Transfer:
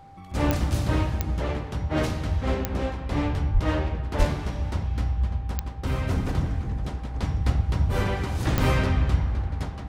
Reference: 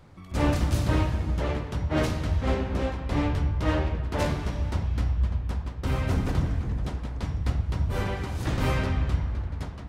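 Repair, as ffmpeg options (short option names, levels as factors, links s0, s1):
-filter_complex "[0:a]adeclick=t=4,bandreject=f=790:w=30,asplit=3[s0][s1][s2];[s0]afade=t=out:st=3.53:d=0.02[s3];[s1]highpass=f=140:w=0.5412,highpass=f=140:w=1.3066,afade=t=in:st=3.53:d=0.02,afade=t=out:st=3.65:d=0.02[s4];[s2]afade=t=in:st=3.65:d=0.02[s5];[s3][s4][s5]amix=inputs=3:normalize=0,asplit=3[s6][s7][s8];[s6]afade=t=out:st=4.18:d=0.02[s9];[s7]highpass=f=140:w=0.5412,highpass=f=140:w=1.3066,afade=t=in:st=4.18:d=0.02,afade=t=out:st=4.3:d=0.02[s10];[s8]afade=t=in:st=4.3:d=0.02[s11];[s9][s10][s11]amix=inputs=3:normalize=0,asetnsamples=n=441:p=0,asendcmd='7.14 volume volume -3.5dB',volume=1"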